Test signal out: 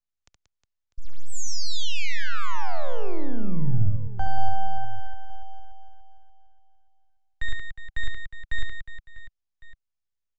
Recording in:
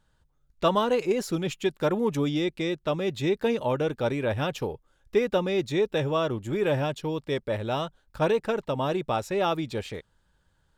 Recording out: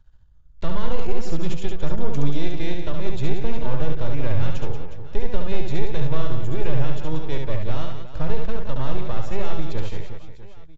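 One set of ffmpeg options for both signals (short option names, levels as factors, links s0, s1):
-filter_complex "[0:a]aeval=exprs='if(lt(val(0),0),0.251*val(0),val(0))':c=same,acrossover=split=170[s0][s1];[s0]aemphasis=mode=reproduction:type=riaa[s2];[s1]alimiter=limit=0.0668:level=0:latency=1:release=216[s3];[s2][s3]amix=inputs=2:normalize=0,aecho=1:1:70|182|361.2|647.9|1107:0.631|0.398|0.251|0.158|0.1,aresample=16000,aresample=44100"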